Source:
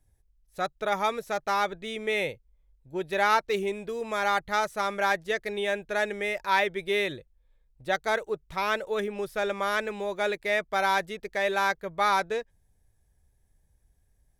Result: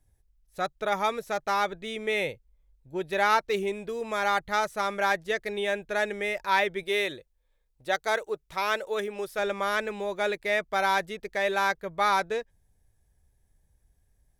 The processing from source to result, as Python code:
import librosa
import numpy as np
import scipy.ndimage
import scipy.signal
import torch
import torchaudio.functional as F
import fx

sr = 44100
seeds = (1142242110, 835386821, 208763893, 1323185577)

y = fx.bass_treble(x, sr, bass_db=-8, treble_db=3, at=(6.83, 9.39))